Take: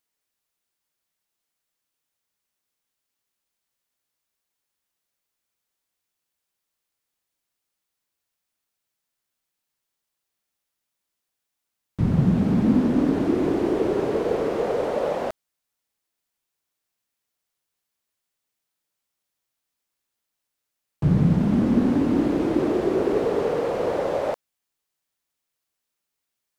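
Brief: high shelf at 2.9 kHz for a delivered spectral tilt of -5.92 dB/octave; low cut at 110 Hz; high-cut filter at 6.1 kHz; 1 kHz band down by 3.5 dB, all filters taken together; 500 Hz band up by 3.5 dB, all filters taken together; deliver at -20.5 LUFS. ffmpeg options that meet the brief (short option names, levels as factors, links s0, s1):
-af "highpass=110,lowpass=6100,equalizer=f=500:t=o:g=6,equalizer=f=1000:t=o:g=-7.5,highshelf=f=2900:g=-5.5,volume=1.06"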